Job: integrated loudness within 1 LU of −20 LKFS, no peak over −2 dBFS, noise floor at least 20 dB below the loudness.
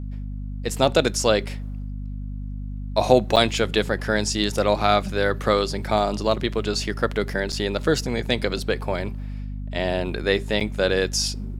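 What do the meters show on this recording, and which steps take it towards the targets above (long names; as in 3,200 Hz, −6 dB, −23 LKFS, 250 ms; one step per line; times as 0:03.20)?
number of dropouts 3; longest dropout 6.6 ms; mains hum 50 Hz; hum harmonics up to 250 Hz; level of the hum −28 dBFS; integrated loudness −22.5 LKFS; sample peak −1.0 dBFS; target loudness −20.0 LKFS
→ repair the gap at 0:03.36/0:07.52/0:10.60, 6.6 ms
mains-hum notches 50/100/150/200/250 Hz
level +2.5 dB
brickwall limiter −2 dBFS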